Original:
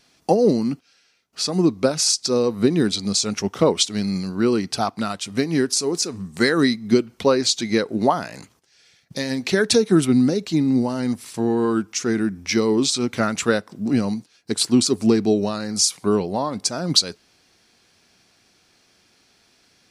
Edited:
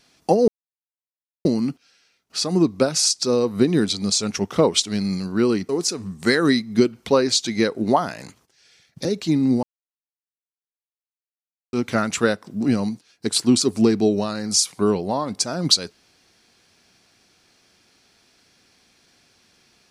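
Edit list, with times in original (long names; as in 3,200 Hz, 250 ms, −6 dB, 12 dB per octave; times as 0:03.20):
0:00.48: splice in silence 0.97 s
0:04.72–0:05.83: remove
0:09.19–0:10.30: remove
0:10.88–0:12.98: silence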